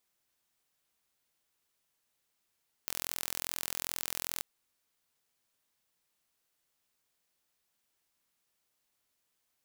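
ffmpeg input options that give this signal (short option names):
-f lavfi -i "aevalsrc='0.398*eq(mod(n,1038),0)':d=1.55:s=44100"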